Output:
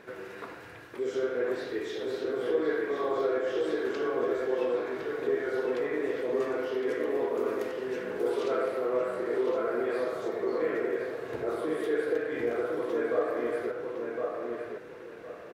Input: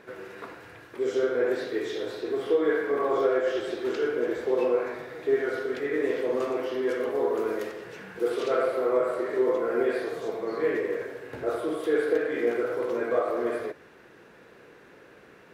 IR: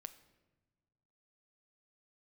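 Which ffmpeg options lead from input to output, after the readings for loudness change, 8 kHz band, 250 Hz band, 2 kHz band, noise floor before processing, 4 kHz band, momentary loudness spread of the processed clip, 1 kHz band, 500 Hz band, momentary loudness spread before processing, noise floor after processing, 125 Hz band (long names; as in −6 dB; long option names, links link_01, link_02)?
−3.0 dB, can't be measured, −2.5 dB, −2.5 dB, −53 dBFS, −3.0 dB, 7 LU, −2.5 dB, −3.0 dB, 9 LU, −46 dBFS, −1.5 dB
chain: -filter_complex "[0:a]asplit=2[link_01][link_02];[link_02]acompressor=threshold=-37dB:ratio=6,volume=1dB[link_03];[link_01][link_03]amix=inputs=2:normalize=0,asplit=2[link_04][link_05];[link_05]adelay=1061,lowpass=frequency=2700:poles=1,volume=-3dB,asplit=2[link_06][link_07];[link_07]adelay=1061,lowpass=frequency=2700:poles=1,volume=0.29,asplit=2[link_08][link_09];[link_09]adelay=1061,lowpass=frequency=2700:poles=1,volume=0.29,asplit=2[link_10][link_11];[link_11]adelay=1061,lowpass=frequency=2700:poles=1,volume=0.29[link_12];[link_04][link_06][link_08][link_10][link_12]amix=inputs=5:normalize=0,volume=-6.5dB"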